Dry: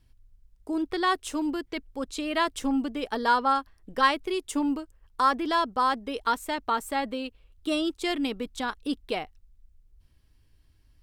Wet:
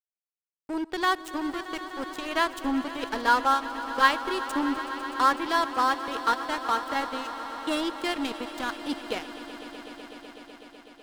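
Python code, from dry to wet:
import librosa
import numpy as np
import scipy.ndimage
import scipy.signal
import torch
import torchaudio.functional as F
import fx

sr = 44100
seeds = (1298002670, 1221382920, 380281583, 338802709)

y = fx.peak_eq(x, sr, hz=1600.0, db=4.0, octaves=0.37)
y = np.sign(y) * np.maximum(np.abs(y) - 10.0 ** (-34.0 / 20.0), 0.0)
y = fx.echo_swell(y, sr, ms=125, loudest=5, wet_db=-16.5)
y = y * 10.0 ** (1.5 / 20.0)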